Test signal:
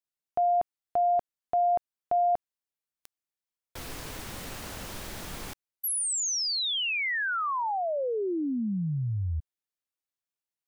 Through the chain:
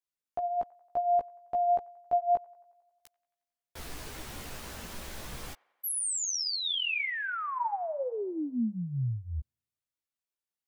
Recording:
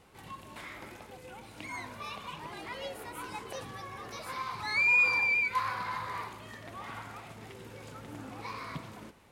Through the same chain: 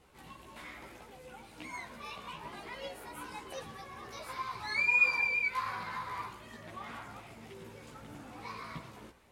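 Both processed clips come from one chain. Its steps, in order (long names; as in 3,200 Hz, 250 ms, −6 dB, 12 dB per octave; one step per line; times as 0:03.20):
multi-voice chorus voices 4, 0.54 Hz, delay 15 ms, depth 2.7 ms
delay with a band-pass on its return 90 ms, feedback 63%, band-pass 1,200 Hz, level −23 dB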